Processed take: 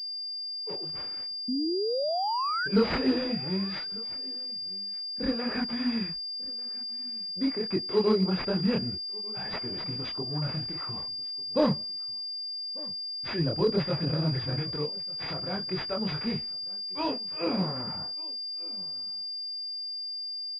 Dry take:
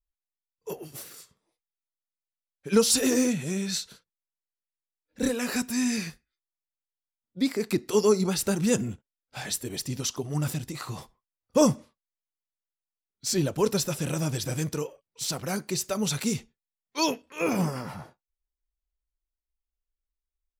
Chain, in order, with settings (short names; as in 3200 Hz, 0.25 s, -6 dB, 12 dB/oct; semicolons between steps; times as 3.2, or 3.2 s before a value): chorus voices 6, 1.5 Hz, delay 24 ms, depth 3 ms; painted sound rise, 1.48–2.68, 240–1600 Hz -29 dBFS; on a send: echo 1.194 s -23.5 dB; on the sum: pulse-width modulation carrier 4800 Hz